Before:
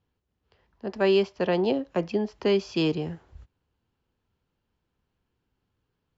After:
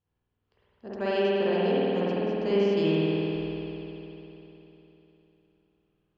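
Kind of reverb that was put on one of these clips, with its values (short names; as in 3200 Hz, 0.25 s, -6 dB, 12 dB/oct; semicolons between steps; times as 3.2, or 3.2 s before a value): spring tank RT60 3.5 s, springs 50 ms, chirp 60 ms, DRR -9.5 dB; gain -10 dB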